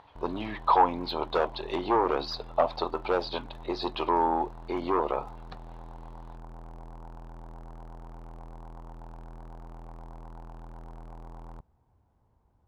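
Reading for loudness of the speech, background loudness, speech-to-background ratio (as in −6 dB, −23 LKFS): −28.5 LKFS, −47.5 LKFS, 19.0 dB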